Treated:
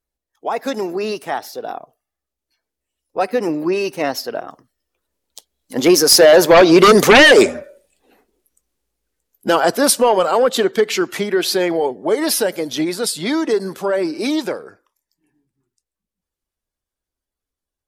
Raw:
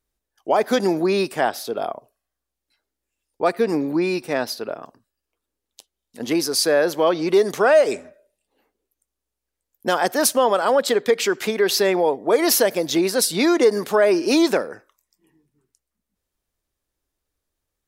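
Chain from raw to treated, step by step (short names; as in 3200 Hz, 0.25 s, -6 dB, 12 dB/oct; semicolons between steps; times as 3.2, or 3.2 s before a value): bin magnitudes rounded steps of 15 dB; Doppler pass-by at 7.14, 25 m/s, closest 18 m; sine folder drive 10 dB, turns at -6.5 dBFS; gain +3 dB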